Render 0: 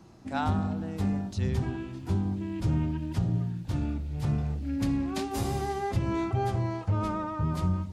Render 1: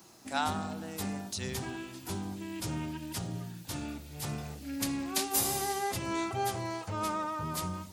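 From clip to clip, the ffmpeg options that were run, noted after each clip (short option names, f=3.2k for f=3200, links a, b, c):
-af "aemphasis=mode=production:type=riaa"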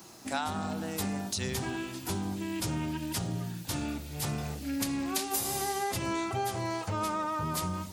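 -af "acompressor=threshold=-34dB:ratio=6,volume=5.5dB"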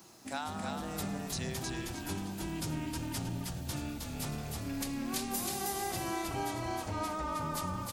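-filter_complex "[0:a]asplit=5[a][b][c][d][e];[b]adelay=315,afreqshift=-39,volume=-3dB[f];[c]adelay=630,afreqshift=-78,volume=-13.2dB[g];[d]adelay=945,afreqshift=-117,volume=-23.3dB[h];[e]adelay=1260,afreqshift=-156,volume=-33.5dB[i];[a][f][g][h][i]amix=inputs=5:normalize=0,volume=-5.5dB"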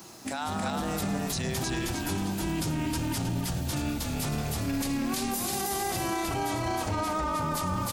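-af "alimiter=level_in=6.5dB:limit=-24dB:level=0:latency=1:release=20,volume=-6.5dB,volume=9dB"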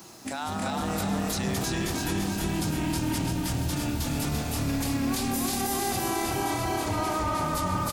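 -af "aecho=1:1:341|682|1023|1364|1705|2046|2387:0.631|0.322|0.164|0.0837|0.0427|0.0218|0.0111"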